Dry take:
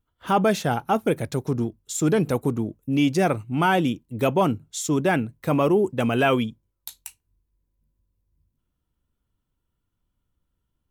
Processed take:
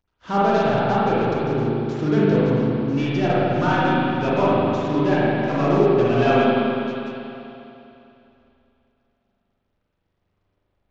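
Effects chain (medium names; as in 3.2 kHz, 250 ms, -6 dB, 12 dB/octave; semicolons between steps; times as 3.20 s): CVSD coder 32 kbps; spring tank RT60 2.9 s, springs 40/50 ms, chirp 45 ms, DRR -8.5 dB; trim -5 dB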